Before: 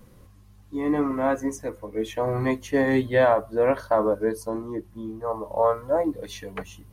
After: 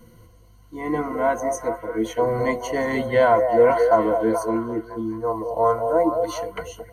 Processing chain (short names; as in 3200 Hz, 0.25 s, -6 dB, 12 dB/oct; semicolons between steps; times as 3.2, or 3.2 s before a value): ripple EQ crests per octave 1.9, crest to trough 15 dB; delay with a stepping band-pass 0.214 s, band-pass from 560 Hz, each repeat 0.7 oct, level -4 dB